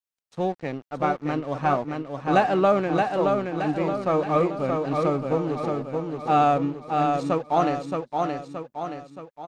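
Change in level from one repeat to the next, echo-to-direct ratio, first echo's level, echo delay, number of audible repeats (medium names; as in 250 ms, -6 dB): -6.0 dB, -3.0 dB, -4.0 dB, 623 ms, 5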